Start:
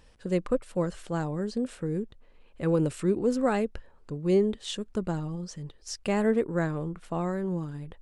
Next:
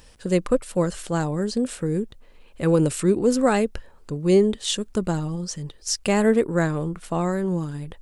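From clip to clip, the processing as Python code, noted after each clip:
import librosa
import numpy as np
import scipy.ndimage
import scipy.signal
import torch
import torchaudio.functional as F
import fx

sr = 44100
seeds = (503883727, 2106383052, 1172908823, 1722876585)

y = fx.high_shelf(x, sr, hz=4900.0, db=10.5)
y = y * 10.0 ** (6.0 / 20.0)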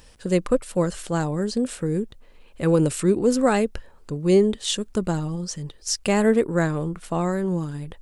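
y = x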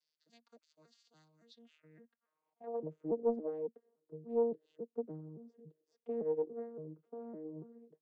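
y = fx.vocoder_arp(x, sr, chord='bare fifth', root=51, every_ms=282)
y = fx.filter_sweep_bandpass(y, sr, from_hz=4600.0, to_hz=430.0, start_s=1.38, end_s=3.0, q=4.3)
y = fx.doppler_dist(y, sr, depth_ms=0.23)
y = y * 10.0 ** (-8.0 / 20.0)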